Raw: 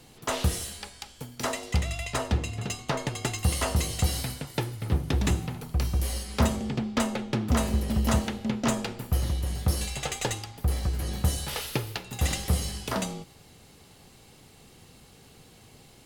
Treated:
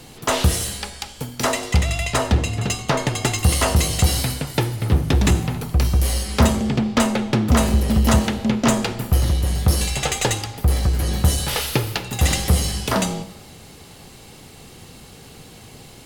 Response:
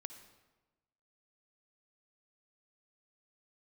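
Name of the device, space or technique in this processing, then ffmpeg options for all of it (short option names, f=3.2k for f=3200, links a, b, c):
saturated reverb return: -filter_complex "[0:a]asplit=2[a][b];[1:a]atrim=start_sample=2205[c];[b][c]afir=irnorm=-1:irlink=0,asoftclip=type=tanh:threshold=-32dB,volume=0.5dB[d];[a][d]amix=inputs=2:normalize=0,volume=6.5dB"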